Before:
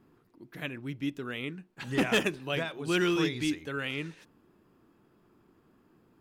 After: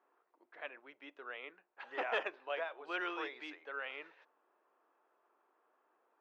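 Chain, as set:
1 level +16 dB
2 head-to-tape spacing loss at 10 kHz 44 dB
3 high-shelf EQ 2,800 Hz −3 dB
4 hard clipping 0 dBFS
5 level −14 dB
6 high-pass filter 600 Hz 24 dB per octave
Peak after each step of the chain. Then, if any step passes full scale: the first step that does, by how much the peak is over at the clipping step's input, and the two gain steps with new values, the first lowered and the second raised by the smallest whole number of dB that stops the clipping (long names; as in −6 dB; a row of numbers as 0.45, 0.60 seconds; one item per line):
−2.0, −4.0, −4.0, −4.0, −18.0, −22.0 dBFS
no step passes full scale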